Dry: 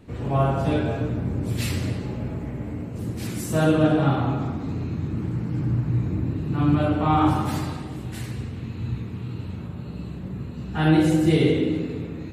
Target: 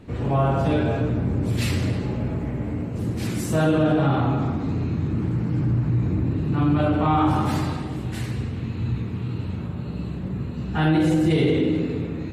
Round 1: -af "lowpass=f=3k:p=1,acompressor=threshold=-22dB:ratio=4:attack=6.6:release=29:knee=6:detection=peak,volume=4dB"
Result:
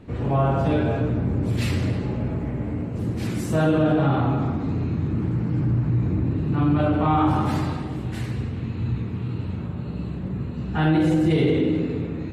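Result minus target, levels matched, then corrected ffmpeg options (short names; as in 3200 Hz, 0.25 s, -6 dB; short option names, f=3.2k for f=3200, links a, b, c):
8000 Hz band -4.5 dB
-af "lowpass=f=6.1k:p=1,acompressor=threshold=-22dB:ratio=4:attack=6.6:release=29:knee=6:detection=peak,volume=4dB"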